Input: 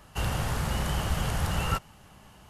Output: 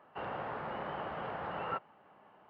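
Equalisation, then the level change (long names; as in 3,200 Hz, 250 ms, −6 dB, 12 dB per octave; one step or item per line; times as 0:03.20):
high-pass filter 460 Hz 12 dB per octave
high-frequency loss of the air 360 metres
head-to-tape spacing loss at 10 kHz 42 dB
+2.5 dB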